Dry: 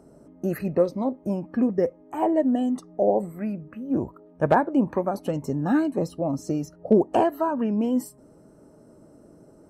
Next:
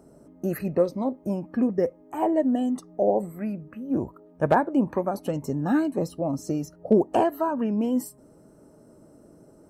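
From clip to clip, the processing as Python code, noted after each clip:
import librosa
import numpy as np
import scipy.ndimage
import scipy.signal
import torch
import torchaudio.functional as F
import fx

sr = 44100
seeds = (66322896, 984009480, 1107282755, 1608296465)

y = fx.high_shelf(x, sr, hz=9300.0, db=6.5)
y = y * librosa.db_to_amplitude(-1.0)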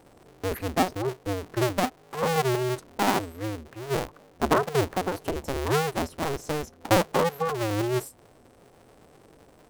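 y = fx.cycle_switch(x, sr, every=2, mode='inverted')
y = y * librosa.db_to_amplitude(-2.0)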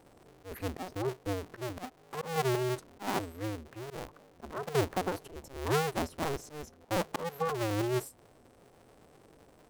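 y = fx.auto_swell(x, sr, attack_ms=210.0)
y = y * librosa.db_to_amplitude(-4.5)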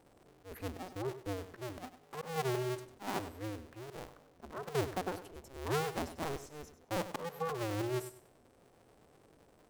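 y = fx.echo_feedback(x, sr, ms=98, feedback_pct=25, wet_db=-12.5)
y = y * librosa.db_to_amplitude(-5.0)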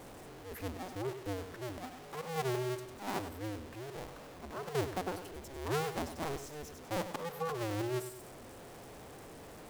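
y = x + 0.5 * 10.0 ** (-45.0 / 20.0) * np.sign(x)
y = y * librosa.db_to_amplitude(-1.0)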